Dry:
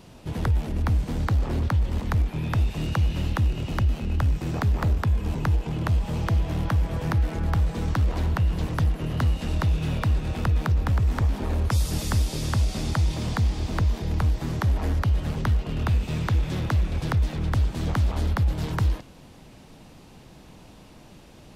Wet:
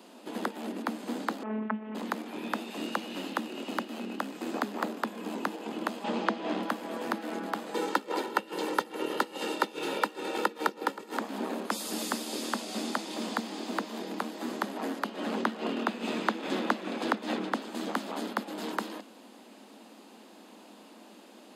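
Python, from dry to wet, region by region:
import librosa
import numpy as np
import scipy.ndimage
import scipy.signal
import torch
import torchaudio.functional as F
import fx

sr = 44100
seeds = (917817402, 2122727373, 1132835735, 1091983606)

y = fx.chain(x, sr, fx.steep_lowpass(hz=2500.0, slope=36),
    fx.robotise(hz=216.0), at=(1.43, 1.95))
y = fx.chain(y, sr, fx.lowpass(hz=4700.0, slope=12),
    fx.env_flatten(amount_pct=50), at=(6.04, 6.63))
y = fx.chain(y, sr, fx.highpass(hz=47.0, slope=24),
    fx.comb(ms=2.2, depth=0.76),
    fx.over_compress(threshold_db=-22.0, ratio=-1.0), at=(7.74, 11.17))
y = fx.chain(y, sr, fx.high_shelf(hz=7900.0, db=-11.0),
    fx.env_flatten(amount_pct=50), at=(15.07, 17.62))
y = scipy.signal.sosfilt(scipy.signal.cheby1(6, 1.0, 210.0, 'highpass', fs=sr, output='sos'), y)
y = fx.peak_eq(y, sr, hz=2200.0, db=-3.0, octaves=0.32)
y = fx.notch(y, sr, hz=5700.0, q=9.0)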